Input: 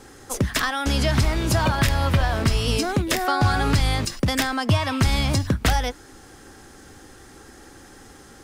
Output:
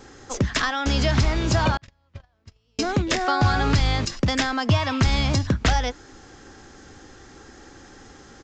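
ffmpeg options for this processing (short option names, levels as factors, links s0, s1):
-filter_complex "[0:a]asettb=1/sr,asplit=3[s0][s1][s2];[s0]atrim=end=1.774[s3];[s1]atrim=start=1.77:end=2.79,asetpts=PTS-STARTPTS,afade=t=in:d=0.004:c=qsin,afade=t=out:st=1.016:d=0.004:c=qsin,agate=range=0.00631:threshold=0.224:ratio=16:detection=peak[s4];[s2]atrim=start=2.786[s5];[s3][s4]acrossfade=d=0.004:c1=hsin:c2=qsin[s6];[s6][s5]acrossfade=d=0.004:c1=qsin:c2=hsin,aresample=16000,aresample=44100"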